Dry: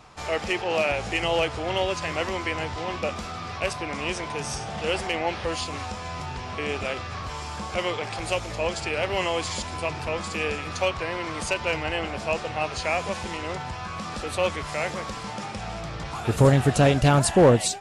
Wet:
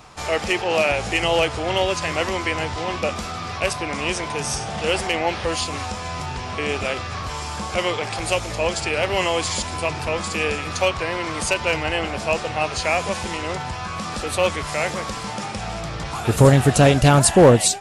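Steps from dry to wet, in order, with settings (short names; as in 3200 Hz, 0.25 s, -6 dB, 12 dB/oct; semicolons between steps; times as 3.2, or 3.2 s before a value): high shelf 8200 Hz +8 dB; gain +4.5 dB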